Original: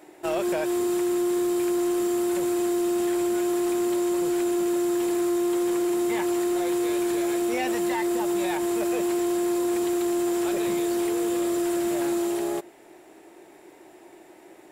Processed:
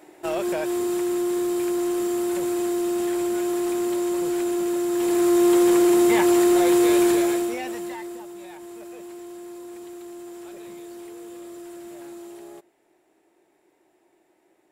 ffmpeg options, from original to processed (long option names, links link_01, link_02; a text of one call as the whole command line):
ffmpeg -i in.wav -af "volume=7.5dB,afade=type=in:start_time=4.9:duration=0.58:silence=0.421697,afade=type=out:start_time=7.04:duration=0.52:silence=0.266073,afade=type=out:start_time=7.56:duration=0.73:silence=0.298538" out.wav